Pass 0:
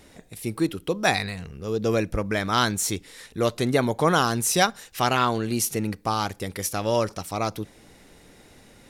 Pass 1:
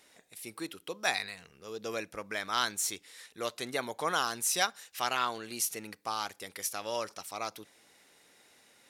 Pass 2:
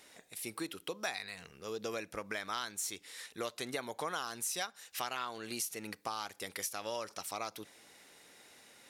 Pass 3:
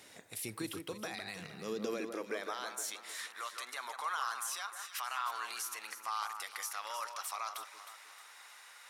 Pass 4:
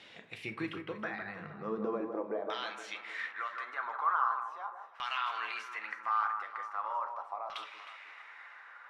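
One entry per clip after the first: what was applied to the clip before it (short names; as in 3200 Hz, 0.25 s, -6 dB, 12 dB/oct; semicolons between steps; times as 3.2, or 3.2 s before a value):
HPF 1100 Hz 6 dB/oct; gain -5.5 dB
compressor 4:1, threshold -39 dBFS, peak gain reduction 14.5 dB; gain +3 dB
limiter -31.5 dBFS, peak gain reduction 11 dB; high-pass sweep 100 Hz -> 1100 Hz, 1.11–3.16; echo with dull and thin repeats by turns 0.156 s, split 1800 Hz, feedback 63%, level -6.5 dB; gain +2 dB
LFO low-pass saw down 0.4 Hz 720–3300 Hz; shoebox room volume 250 m³, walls furnished, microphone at 0.76 m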